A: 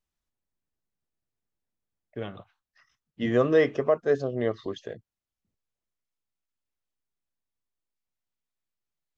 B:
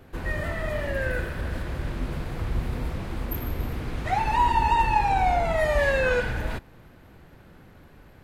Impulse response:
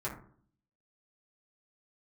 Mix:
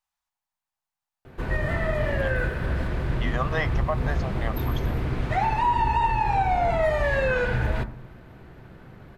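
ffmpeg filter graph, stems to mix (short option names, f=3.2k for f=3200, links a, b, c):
-filter_complex "[0:a]lowshelf=f=590:t=q:w=3:g=-12,volume=2dB[a];[1:a]highshelf=f=5.6k:g=-11,adelay=1250,volume=2dB,asplit=2[b][c];[c]volume=-10dB[d];[2:a]atrim=start_sample=2205[e];[d][e]afir=irnorm=-1:irlink=0[f];[a][b][f]amix=inputs=3:normalize=0,alimiter=limit=-14dB:level=0:latency=1:release=170"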